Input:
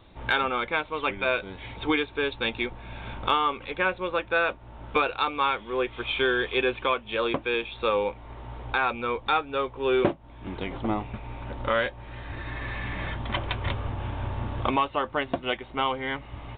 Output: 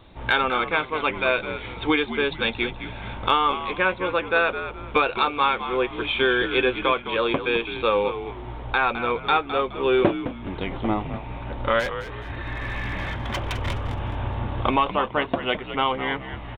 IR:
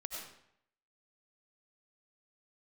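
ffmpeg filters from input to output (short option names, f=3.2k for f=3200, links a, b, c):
-filter_complex "[0:a]asplit=3[a][b][c];[a]afade=t=out:st=11.79:d=0.02[d];[b]asoftclip=type=hard:threshold=-26.5dB,afade=t=in:st=11.79:d=0.02,afade=t=out:st=13.87:d=0.02[e];[c]afade=t=in:st=13.87:d=0.02[f];[d][e][f]amix=inputs=3:normalize=0,asplit=2[g][h];[h]asplit=3[i][j][k];[i]adelay=210,afreqshift=-75,volume=-10.5dB[l];[j]adelay=420,afreqshift=-150,volume=-20.4dB[m];[k]adelay=630,afreqshift=-225,volume=-30.3dB[n];[l][m][n]amix=inputs=3:normalize=0[o];[g][o]amix=inputs=2:normalize=0,volume=3.5dB"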